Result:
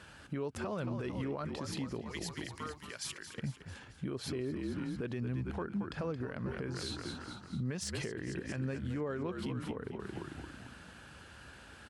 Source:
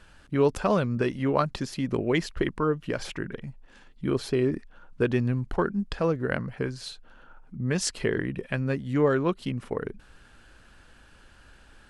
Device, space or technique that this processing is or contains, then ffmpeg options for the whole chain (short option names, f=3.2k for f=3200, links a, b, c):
podcast mastering chain: -filter_complex "[0:a]asettb=1/sr,asplit=3[a][b][c];[a]atrim=end=2.014[d];[b]atrim=start=2.01:end=3.37,asetpts=PTS-STARTPTS,afade=t=in:d=0.004:c=qsin,afade=t=out:st=1.356:d=0.004:c=qsin,aderivative[e];[c]atrim=start=3.366[f];[d][e]acrossfade=d=0.004:c1=hsin:c2=qsin[g];[g][f]acrossfade=d=0.004:c1=qsin:c2=hsin,asplit=7[h][i][j][k][l][m][n];[i]adelay=223,afreqshift=-49,volume=-11.5dB[o];[j]adelay=446,afreqshift=-98,volume=-16.4dB[p];[k]adelay=669,afreqshift=-147,volume=-21.3dB[q];[l]adelay=892,afreqshift=-196,volume=-26.1dB[r];[m]adelay=1115,afreqshift=-245,volume=-31dB[s];[n]adelay=1338,afreqshift=-294,volume=-35.9dB[t];[h][o][p][q][r][s][t]amix=inputs=7:normalize=0,highpass=f=64:w=0.5412,highpass=f=64:w=1.3066,deesser=0.55,acompressor=threshold=-35dB:ratio=3,alimiter=level_in=7.5dB:limit=-24dB:level=0:latency=1:release=91,volume=-7.5dB,volume=3dB" -ar 44100 -c:a libmp3lame -b:a 96k